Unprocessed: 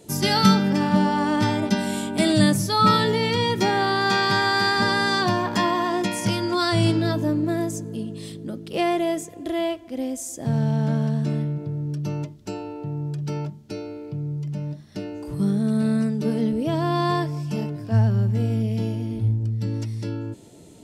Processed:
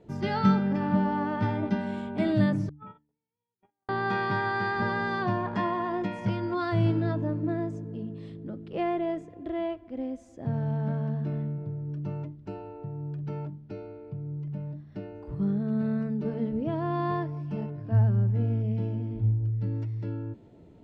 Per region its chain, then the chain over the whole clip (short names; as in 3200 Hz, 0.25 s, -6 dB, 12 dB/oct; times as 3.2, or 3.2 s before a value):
2.69–3.89 gate -15 dBFS, range -59 dB + compressor 12:1, threshold -30 dBFS + rippled Chebyshev low-pass 3400 Hz, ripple 6 dB
whole clip: LPF 1900 Hz 12 dB/oct; low shelf 84 Hz +9.5 dB; de-hum 74.31 Hz, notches 4; gain -6.5 dB